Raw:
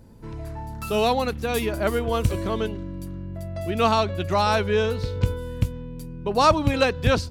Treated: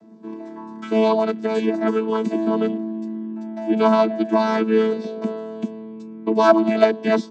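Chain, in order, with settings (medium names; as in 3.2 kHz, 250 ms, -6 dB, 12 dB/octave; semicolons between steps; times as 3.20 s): vocoder on a held chord bare fifth, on A3; trim +5 dB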